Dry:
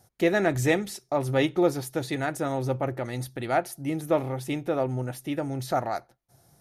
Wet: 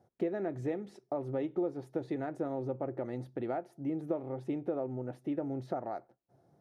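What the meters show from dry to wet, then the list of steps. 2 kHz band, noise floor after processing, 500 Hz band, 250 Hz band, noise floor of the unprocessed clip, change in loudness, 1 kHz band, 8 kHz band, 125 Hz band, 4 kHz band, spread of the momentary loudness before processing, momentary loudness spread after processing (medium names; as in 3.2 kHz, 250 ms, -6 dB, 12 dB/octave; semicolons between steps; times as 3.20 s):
-20.5 dB, -73 dBFS, -9.0 dB, -7.0 dB, -67 dBFS, -9.5 dB, -12.0 dB, under -25 dB, -12.0 dB, under -20 dB, 9 LU, 5 LU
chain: compression 6:1, threshold -29 dBFS, peak gain reduction 12 dB; band-pass filter 370 Hz, Q 0.88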